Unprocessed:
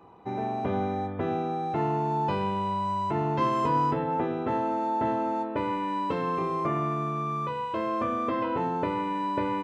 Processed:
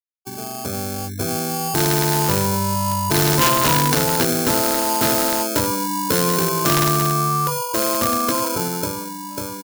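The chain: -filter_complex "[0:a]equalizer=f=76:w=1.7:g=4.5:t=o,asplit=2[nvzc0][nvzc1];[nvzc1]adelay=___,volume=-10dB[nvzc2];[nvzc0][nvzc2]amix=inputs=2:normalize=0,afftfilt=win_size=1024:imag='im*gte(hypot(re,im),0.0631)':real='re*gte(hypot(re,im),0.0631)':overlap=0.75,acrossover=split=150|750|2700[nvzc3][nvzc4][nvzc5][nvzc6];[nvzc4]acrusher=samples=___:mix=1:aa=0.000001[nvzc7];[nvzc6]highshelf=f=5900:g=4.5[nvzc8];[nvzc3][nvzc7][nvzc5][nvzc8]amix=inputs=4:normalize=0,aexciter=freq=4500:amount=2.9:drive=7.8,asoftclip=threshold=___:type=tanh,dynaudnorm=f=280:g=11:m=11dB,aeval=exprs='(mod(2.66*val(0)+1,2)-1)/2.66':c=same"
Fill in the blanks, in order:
29, 23, -11.5dB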